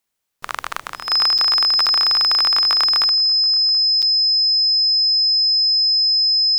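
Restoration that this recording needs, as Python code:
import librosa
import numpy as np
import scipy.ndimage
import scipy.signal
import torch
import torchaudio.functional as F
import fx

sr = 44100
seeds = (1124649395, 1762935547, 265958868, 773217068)

y = fx.notch(x, sr, hz=5100.0, q=30.0)
y = fx.fix_interpolate(y, sr, at_s=(1.38, 1.86, 4.02), length_ms=6.7)
y = fx.fix_echo_inverse(y, sr, delay_ms=730, level_db=-23.5)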